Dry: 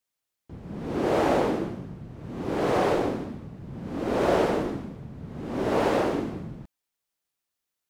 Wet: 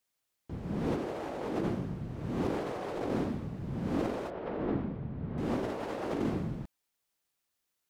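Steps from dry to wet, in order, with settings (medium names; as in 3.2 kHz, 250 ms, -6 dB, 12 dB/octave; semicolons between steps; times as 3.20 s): compressor with a negative ratio -31 dBFS, ratio -1; 4.30–5.38 s: distance through air 360 m; trim -2.5 dB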